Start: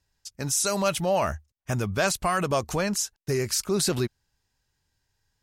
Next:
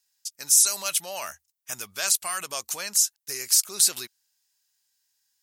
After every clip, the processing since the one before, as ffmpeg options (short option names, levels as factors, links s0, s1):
-af "aderivative,volume=2.51"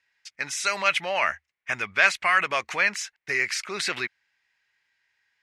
-af "lowpass=f=2100:t=q:w=4,volume=2.37"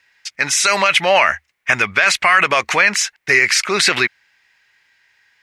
-af "alimiter=level_in=5.96:limit=0.891:release=50:level=0:latency=1,volume=0.891"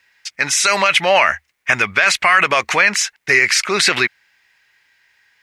-af "acrusher=bits=11:mix=0:aa=0.000001"